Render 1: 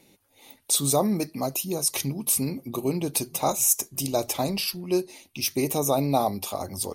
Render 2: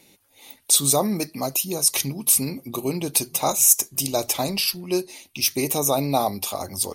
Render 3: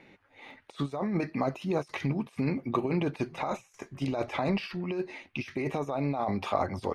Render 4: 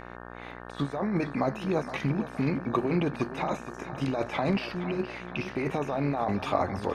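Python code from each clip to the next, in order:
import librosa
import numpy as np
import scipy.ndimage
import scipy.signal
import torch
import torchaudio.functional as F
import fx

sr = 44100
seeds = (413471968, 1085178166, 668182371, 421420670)

y1 = fx.tilt_shelf(x, sr, db=-3.0, hz=1200.0)
y1 = F.gain(torch.from_numpy(y1), 3.0).numpy()
y2 = fx.over_compress(y1, sr, threshold_db=-27.0, ratio=-1.0)
y2 = fx.lowpass_res(y2, sr, hz=1800.0, q=2.1)
y2 = F.gain(torch.from_numpy(y2), -3.0).numpy()
y3 = fx.echo_feedback(y2, sr, ms=468, feedback_pct=48, wet_db=-13)
y3 = fx.dmg_buzz(y3, sr, base_hz=60.0, harmonics=30, level_db=-45.0, tilt_db=-1, odd_only=False)
y3 = F.gain(torch.from_numpy(y3), 1.5).numpy()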